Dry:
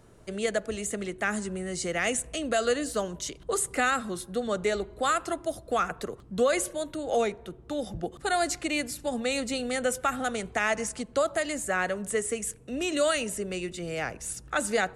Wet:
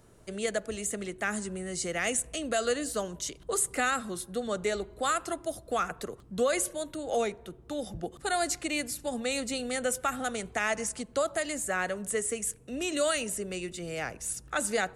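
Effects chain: high shelf 6800 Hz +6.5 dB; gain -3 dB

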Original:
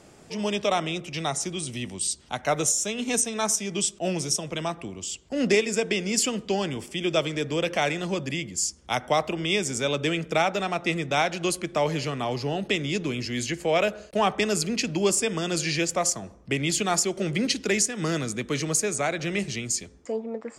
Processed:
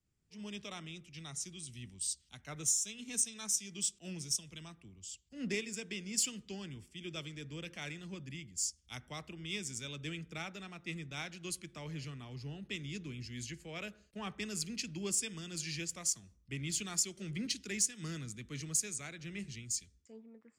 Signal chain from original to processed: passive tone stack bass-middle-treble 6-0-2; in parallel at -10.5 dB: hard clip -38.5 dBFS, distortion -12 dB; on the sum: three-band expander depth 70%; gain +1.5 dB

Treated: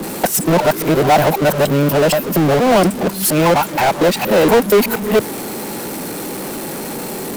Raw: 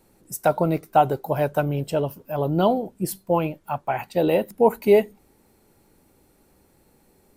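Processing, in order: local time reversal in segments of 0.236 s; HPF 160 Hz 24 dB/oct; power-law curve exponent 0.35

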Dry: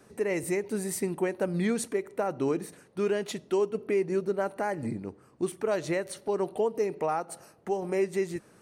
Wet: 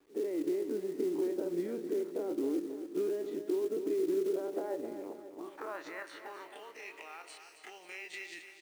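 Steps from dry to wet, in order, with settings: spectral dilation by 60 ms; RIAA curve recording; gate -48 dBFS, range -13 dB; treble ducked by the level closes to 2500 Hz, closed at -20 dBFS; bell 300 Hz +13.5 dB 0.34 oct; in parallel at 0 dB: level quantiser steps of 15 dB; on the sum: limiter -16.5 dBFS, peak gain reduction 6.5 dB; compressor 5:1, threshold -26 dBFS, peak gain reduction 6 dB; band-pass sweep 350 Hz -> 2700 Hz, 4.25–6.9; companded quantiser 6-bit; feedback echo 0.269 s, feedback 56%, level -10 dB; gain -2 dB

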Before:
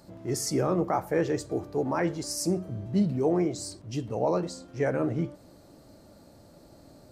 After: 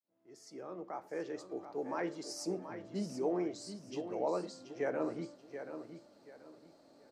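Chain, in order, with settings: opening faded in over 2.28 s; three-band isolator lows -22 dB, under 220 Hz, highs -14 dB, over 6800 Hz; on a send: feedback echo 0.731 s, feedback 28%, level -9.5 dB; on the sum: gain -7.5 dB

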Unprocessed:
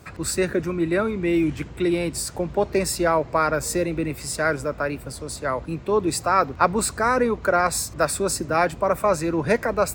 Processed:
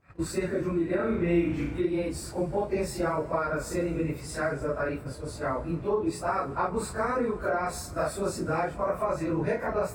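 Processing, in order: phase scrambler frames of 0.1 s; compressor, threshold -22 dBFS, peak gain reduction 9.5 dB; 0.96–1.79 flutter echo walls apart 6 m, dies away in 0.62 s; gate -35 dBFS, range -19 dB; high shelf 2700 Hz -11.5 dB; Schroeder reverb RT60 2.1 s, combs from 26 ms, DRR 16.5 dB; gain -1.5 dB

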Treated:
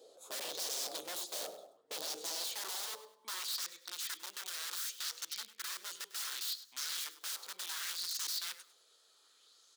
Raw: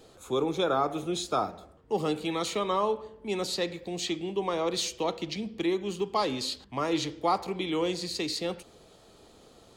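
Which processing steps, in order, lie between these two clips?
wrapped overs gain 28.5 dB; on a send: feedback echo 0.101 s, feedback 26%, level -16 dB; on the sum: high-pass sweep 630 Hz -> 1400 Hz, 2.17–3.81; band shelf 1300 Hz -12 dB 2.4 oct; LFO bell 0.67 Hz 470–6300 Hz +6 dB; gain -5 dB

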